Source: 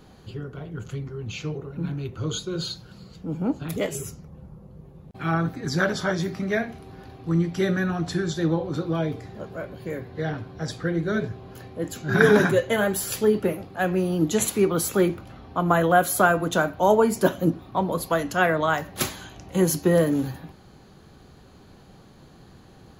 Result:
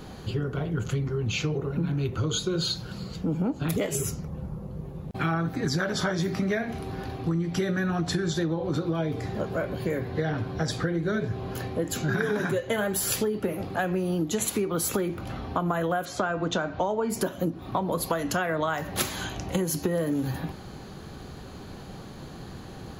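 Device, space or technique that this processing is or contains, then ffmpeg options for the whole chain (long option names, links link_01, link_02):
serial compression, peaks first: -filter_complex "[0:a]acompressor=threshold=-27dB:ratio=6,acompressor=threshold=-34dB:ratio=2.5,asettb=1/sr,asplit=3[link_01][link_02][link_03];[link_01]atrim=end=16.054[link_04];[link_02]atrim=start=16.05:end=17.1,asetpts=PTS-STARTPTS,afade=type=in:duration=0.004:curve=qsin,afade=type=out:start_time=1.046:duration=0.004:curve=qsin,lowpass=frequency=6200:width=0.5412,lowpass=frequency=6200:width=1.3066[link_05];[link_03]atrim=start=17.096[link_06];[link_04][link_05]acrossfade=duration=0.004:curve1=hsin:curve2=qsin[link_07];[link_07][link_06]acrossfade=duration=0.004:curve1=qsin:curve2=hsin,volume=8.5dB"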